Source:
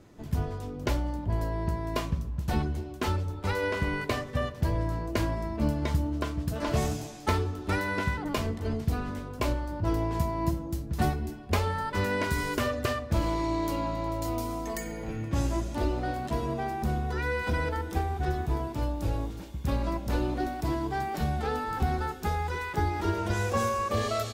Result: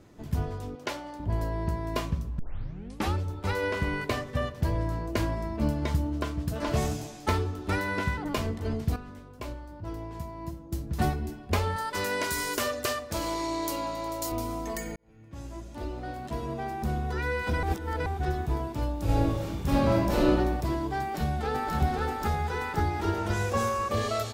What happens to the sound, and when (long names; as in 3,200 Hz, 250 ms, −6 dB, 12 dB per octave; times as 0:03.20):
0:00.75–0:01.20: meter weighting curve A
0:02.39: tape start 0.75 s
0:08.96–0:10.72: clip gain −9.5 dB
0:11.76–0:14.32: bass and treble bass −11 dB, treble +9 dB
0:14.96–0:17.09: fade in
0:17.63–0:18.06: reverse
0:19.04–0:20.30: thrown reverb, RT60 1.1 s, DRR −7 dB
0:21.01–0:21.74: delay throw 530 ms, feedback 60%, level −2.5 dB